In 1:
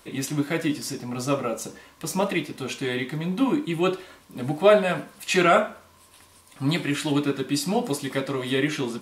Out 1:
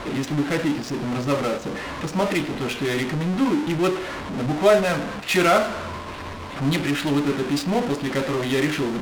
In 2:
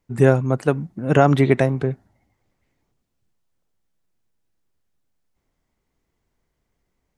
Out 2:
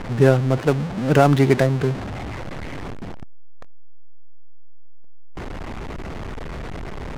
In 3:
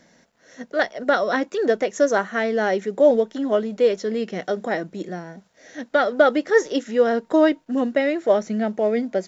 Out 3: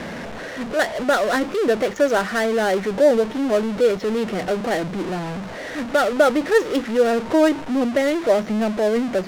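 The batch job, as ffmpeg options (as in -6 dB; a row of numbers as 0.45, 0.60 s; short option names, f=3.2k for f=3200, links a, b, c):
-af "aeval=exprs='val(0)+0.5*0.0794*sgn(val(0))':c=same,adynamicsmooth=sensitivity=3.5:basefreq=530,volume=-1dB"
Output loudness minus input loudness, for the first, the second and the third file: +2.0, 0.0, +1.0 LU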